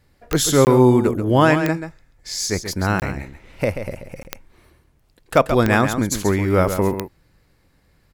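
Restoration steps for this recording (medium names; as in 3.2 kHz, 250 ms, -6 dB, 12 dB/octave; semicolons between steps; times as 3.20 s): de-click; interpolate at 0.65/3.00/4.23 s, 19 ms; inverse comb 135 ms -9 dB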